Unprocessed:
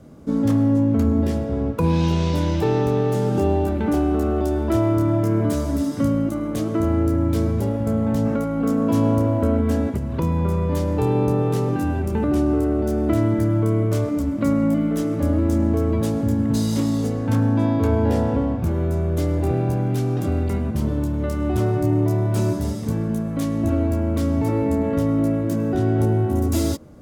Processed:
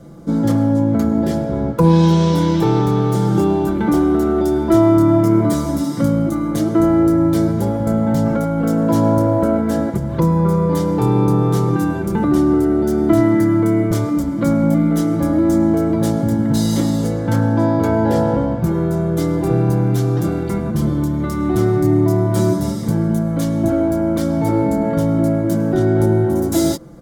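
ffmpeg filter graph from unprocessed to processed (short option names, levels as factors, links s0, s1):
-filter_complex "[0:a]asettb=1/sr,asplit=3[s0][s1][s2];[s0]atrim=end=13.204[s3];[s1]atrim=start=13.2:end=13.91,asetpts=PTS-STARTPTS,afade=t=in:d=0.004:c=qsin,afade=t=out:st=0.706:d=0.004:c=qsin,highpass=120,equalizer=f=2000:t=o:w=0.29:g=6.5[s4];[s2]atrim=start=13.906[s5];[s3][s4]acrossfade=d=0.004:c1=hsin:c2=qsin[s6];[s6][s5]acrossfade=d=0.004:c1=qsin:c2=hsin,equalizer=f=2600:w=6.5:g=-10,aecho=1:1:5.9:0.78,volume=1.58"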